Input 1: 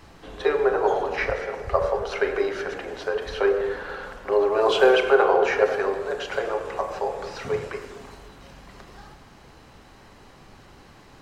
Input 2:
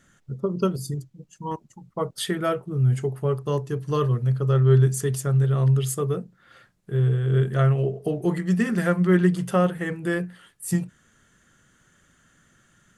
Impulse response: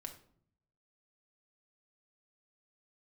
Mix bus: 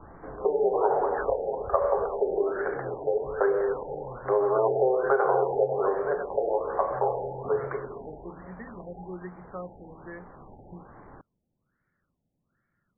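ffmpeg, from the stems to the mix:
-filter_complex "[0:a]lowpass=frequency=1500:width=0.5412,lowpass=frequency=1500:width=1.3066,acompressor=threshold=-21dB:ratio=6,volume=3dB[link_01];[1:a]volume=-15.5dB[link_02];[link_01][link_02]amix=inputs=2:normalize=0,acrossover=split=340|3000[link_03][link_04][link_05];[link_03]acompressor=threshold=-50dB:ratio=2[link_06];[link_06][link_04][link_05]amix=inputs=3:normalize=0,afftfilt=real='re*lt(b*sr/1024,860*pow(2400/860,0.5+0.5*sin(2*PI*1.2*pts/sr)))':imag='im*lt(b*sr/1024,860*pow(2400/860,0.5+0.5*sin(2*PI*1.2*pts/sr)))':win_size=1024:overlap=0.75"

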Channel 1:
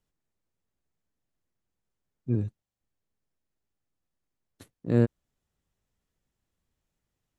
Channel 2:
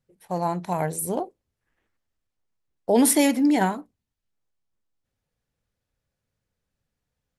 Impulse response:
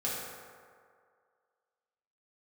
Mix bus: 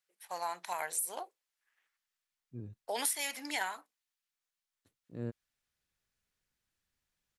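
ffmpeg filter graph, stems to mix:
-filter_complex "[0:a]adelay=250,volume=-9dB[link_01];[1:a]highpass=1400,acompressor=threshold=-32dB:ratio=6,volume=1dB,asplit=2[link_02][link_03];[link_03]apad=whole_len=336841[link_04];[link_01][link_04]sidechaincompress=threshold=-55dB:ratio=12:attack=9.7:release=1380[link_05];[link_05][link_02]amix=inputs=2:normalize=0"

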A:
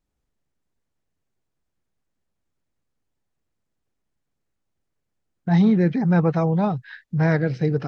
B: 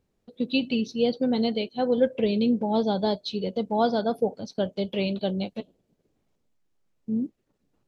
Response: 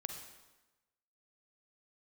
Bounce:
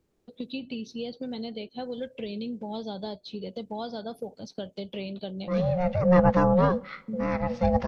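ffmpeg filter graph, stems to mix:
-filter_complex "[0:a]aeval=exprs='val(0)*sin(2*PI*360*n/s)':channel_layout=same,volume=1.5dB,asplit=2[link_01][link_02];[link_02]volume=-15dB[link_03];[1:a]acrossover=split=100|2300[link_04][link_05][link_06];[link_04]acompressor=threshold=-55dB:ratio=4[link_07];[link_05]acompressor=threshold=-34dB:ratio=4[link_08];[link_06]acompressor=threshold=-45dB:ratio=4[link_09];[link_07][link_08][link_09]amix=inputs=3:normalize=0,volume=-0.5dB,asplit=2[link_10][link_11];[link_11]apad=whole_len=351809[link_12];[link_01][link_12]sidechaincompress=threshold=-46dB:ratio=5:attack=9.1:release=535[link_13];[2:a]atrim=start_sample=2205[link_14];[link_03][link_14]afir=irnorm=-1:irlink=0[link_15];[link_13][link_10][link_15]amix=inputs=3:normalize=0"

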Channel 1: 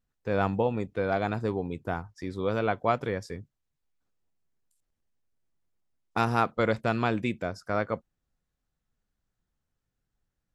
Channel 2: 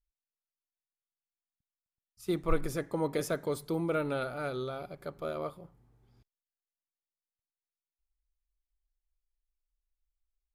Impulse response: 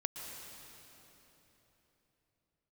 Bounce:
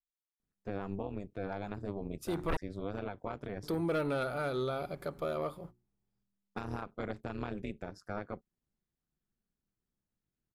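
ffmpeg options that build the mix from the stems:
-filter_complex "[0:a]equalizer=frequency=180:width_type=o:width=1.8:gain=5.5,tremolo=f=200:d=0.919,adelay=400,volume=-5.5dB[link_01];[1:a]agate=range=-25dB:threshold=-52dB:ratio=16:detection=peak,bandreject=frequency=60:width_type=h:width=6,bandreject=frequency=120:width_type=h:width=6,bandreject=frequency=180:width_type=h:width=6,bandreject=frequency=240:width_type=h:width=6,bandreject=frequency=300:width_type=h:width=6,bandreject=frequency=360:width_type=h:width=6,aeval=exprs='0.168*sin(PI/2*2.51*val(0)/0.168)':channel_layout=same,volume=-7.5dB,asplit=3[link_02][link_03][link_04];[link_02]atrim=end=2.57,asetpts=PTS-STARTPTS,afade=type=out:start_time=2.566:duration=0.004:curve=hsin[link_05];[link_03]atrim=start=2.57:end=3.63,asetpts=PTS-STARTPTS,volume=0[link_06];[link_04]atrim=start=3.63,asetpts=PTS-STARTPTS,afade=type=in:duration=0.004:curve=hsin[link_07];[link_05][link_06][link_07]concat=n=3:v=0:a=1[link_08];[link_01][link_08]amix=inputs=2:normalize=0,alimiter=level_in=2.5dB:limit=-24dB:level=0:latency=1:release=188,volume=-2.5dB"

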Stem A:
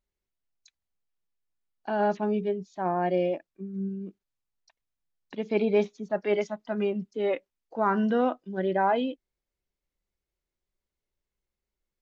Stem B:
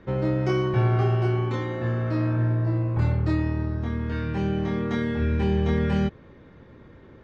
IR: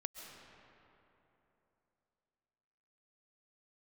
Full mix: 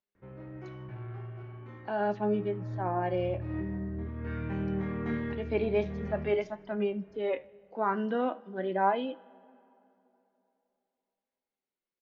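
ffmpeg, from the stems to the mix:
-filter_complex "[0:a]acrossover=split=160 5200:gain=0.0708 1 0.0708[link_01][link_02][link_03];[link_01][link_02][link_03]amix=inputs=3:normalize=0,volume=0dB,asplit=4[link_04][link_05][link_06][link_07];[link_05]volume=-18dB[link_08];[link_06]volume=-24dB[link_09];[1:a]highshelf=frequency=3100:width_type=q:width=1.5:gain=-10.5,asoftclip=type=tanh:threshold=-18.5dB,adelay=150,volume=-4.5dB,afade=type=in:start_time=1.97:duration=0.75:silence=0.251189,asplit=3[link_10][link_11][link_12];[link_11]volume=-15dB[link_13];[link_12]volume=-11.5dB[link_14];[link_07]apad=whole_len=325666[link_15];[link_10][link_15]sidechaincompress=threshold=-52dB:ratio=3:attack=16:release=212[link_16];[2:a]atrim=start_sample=2205[link_17];[link_08][link_13]amix=inputs=2:normalize=0[link_18];[link_18][link_17]afir=irnorm=-1:irlink=0[link_19];[link_09][link_14]amix=inputs=2:normalize=0,aecho=0:1:77|154|231|308|385|462:1|0.41|0.168|0.0689|0.0283|0.0116[link_20];[link_04][link_16][link_19][link_20]amix=inputs=4:normalize=0,flanger=delay=9.6:depth=6.7:regen=67:speed=0.44:shape=sinusoidal"

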